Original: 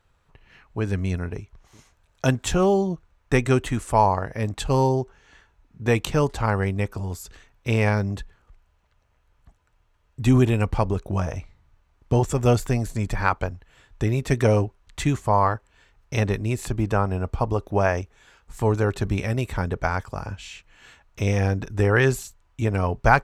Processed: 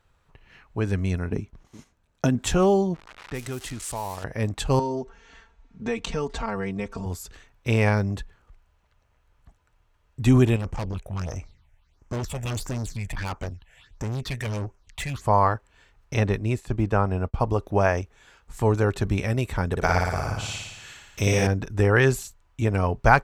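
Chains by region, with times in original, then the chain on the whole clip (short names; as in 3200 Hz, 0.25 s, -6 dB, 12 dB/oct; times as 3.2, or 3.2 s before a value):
1.31–2.44 gate -56 dBFS, range -7 dB + bell 230 Hz +11 dB 1.4 oct + compressor 10:1, threshold -16 dBFS
2.94–4.24 switching spikes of -15 dBFS + low-pass opened by the level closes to 1300 Hz, open at -13.5 dBFS + compressor 2:1, threshold -39 dBFS
4.79–7.06 comb 4.4 ms, depth 94% + compressor 2.5:1, threshold -28 dBFS + LPF 7700 Hz 24 dB/oct
10.56–15.21 bell 4400 Hz +9.5 dB 2 oct + phaser stages 6, 1.5 Hz, lowest notch 290–4000 Hz + tube stage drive 26 dB, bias 0.35
16.14–17.4 expander -28 dBFS + high shelf 6300 Hz -7 dB
19.71–21.47 high shelf 3500 Hz +9 dB + flutter echo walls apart 9.8 m, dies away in 1.1 s
whole clip: dry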